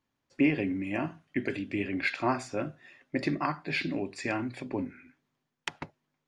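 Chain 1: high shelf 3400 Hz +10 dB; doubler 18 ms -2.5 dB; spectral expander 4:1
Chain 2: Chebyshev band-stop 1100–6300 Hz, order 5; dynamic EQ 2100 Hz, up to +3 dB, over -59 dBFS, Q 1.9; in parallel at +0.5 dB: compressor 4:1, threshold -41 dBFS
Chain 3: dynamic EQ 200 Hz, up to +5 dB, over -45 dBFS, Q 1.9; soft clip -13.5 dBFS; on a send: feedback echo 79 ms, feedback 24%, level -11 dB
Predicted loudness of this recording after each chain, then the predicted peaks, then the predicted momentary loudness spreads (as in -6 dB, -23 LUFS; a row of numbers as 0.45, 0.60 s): -22.5, -32.0, -31.0 LUFS; -7.5, -15.0, -14.5 dBFS; 0, 14, 14 LU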